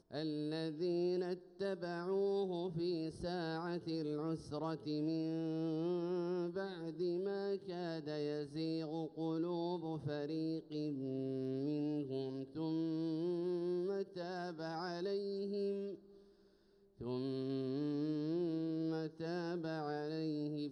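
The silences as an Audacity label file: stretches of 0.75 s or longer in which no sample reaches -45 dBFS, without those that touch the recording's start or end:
15.950000	17.010000	silence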